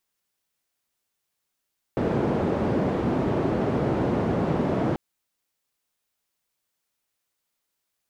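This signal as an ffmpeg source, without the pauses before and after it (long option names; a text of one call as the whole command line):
ffmpeg -f lavfi -i "anoisesrc=color=white:duration=2.99:sample_rate=44100:seed=1,highpass=frequency=100,lowpass=frequency=410,volume=-1.2dB" out.wav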